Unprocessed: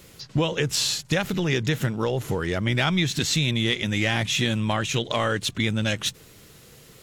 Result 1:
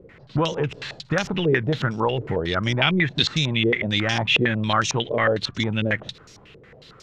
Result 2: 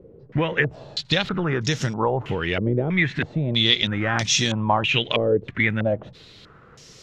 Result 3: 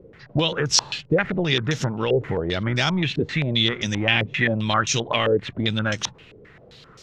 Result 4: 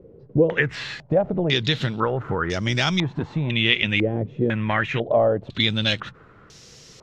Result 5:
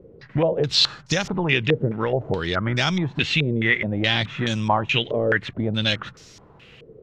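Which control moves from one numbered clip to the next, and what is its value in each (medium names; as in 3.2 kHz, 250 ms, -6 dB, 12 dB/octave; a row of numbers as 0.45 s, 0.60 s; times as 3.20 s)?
step-sequenced low-pass, rate: 11 Hz, 3.1 Hz, 7.6 Hz, 2 Hz, 4.7 Hz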